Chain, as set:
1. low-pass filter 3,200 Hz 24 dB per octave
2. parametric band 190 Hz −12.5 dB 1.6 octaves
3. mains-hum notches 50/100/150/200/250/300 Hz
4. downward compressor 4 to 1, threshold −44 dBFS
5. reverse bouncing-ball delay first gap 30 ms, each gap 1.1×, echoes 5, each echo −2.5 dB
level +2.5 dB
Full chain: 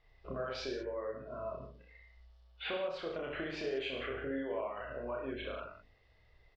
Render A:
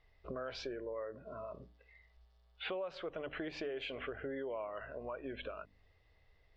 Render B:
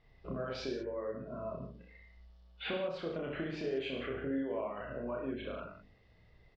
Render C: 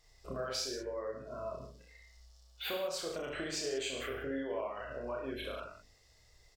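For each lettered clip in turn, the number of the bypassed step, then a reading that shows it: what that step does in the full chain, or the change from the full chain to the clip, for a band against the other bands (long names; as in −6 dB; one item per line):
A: 5, change in momentary loudness spread −6 LU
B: 2, 125 Hz band +6.0 dB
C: 1, 4 kHz band +4.5 dB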